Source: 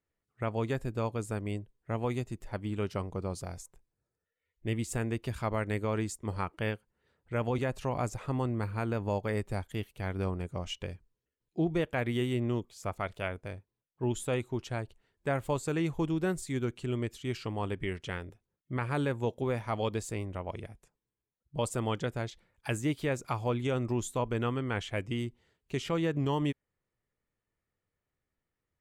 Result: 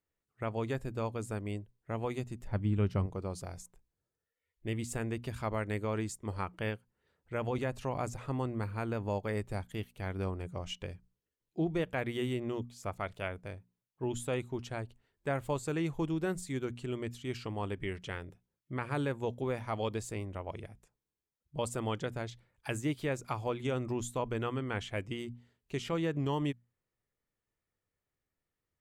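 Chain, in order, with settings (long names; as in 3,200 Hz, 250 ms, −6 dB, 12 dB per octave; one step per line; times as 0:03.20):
0:02.47–0:03.06: bass and treble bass +10 dB, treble −6 dB
mains-hum notches 60/120/180/240 Hz
level −2.5 dB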